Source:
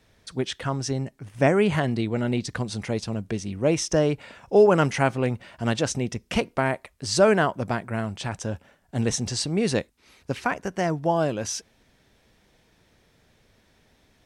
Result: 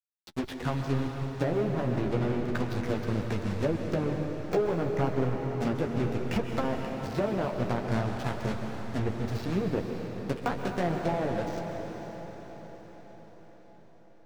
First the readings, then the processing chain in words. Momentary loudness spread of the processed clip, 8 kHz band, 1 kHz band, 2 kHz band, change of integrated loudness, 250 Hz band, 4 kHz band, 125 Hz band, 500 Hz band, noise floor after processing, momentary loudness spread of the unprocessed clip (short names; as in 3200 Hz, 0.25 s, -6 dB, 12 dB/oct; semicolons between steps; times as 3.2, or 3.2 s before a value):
9 LU, -19.5 dB, -6.0 dB, -8.5 dB, -6.0 dB, -4.0 dB, -11.5 dB, -3.0 dB, -7.0 dB, -52 dBFS, 12 LU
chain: block floating point 3-bit; treble ducked by the level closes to 1000 Hz, closed at -18.5 dBFS; LPF 7900 Hz 24 dB/oct; notch 3100 Hz, Q 14; de-esser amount 95%; high shelf 3600 Hz +4 dB; compressor, threshold -23 dBFS, peak gain reduction 11 dB; backlash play -27.5 dBFS; flange 0.32 Hz, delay 9.4 ms, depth 8.3 ms, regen -20%; diffused feedback echo 0.532 s, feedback 57%, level -11 dB; plate-style reverb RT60 3.3 s, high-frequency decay 0.95×, pre-delay 0.115 s, DRR 4 dB; gain +2.5 dB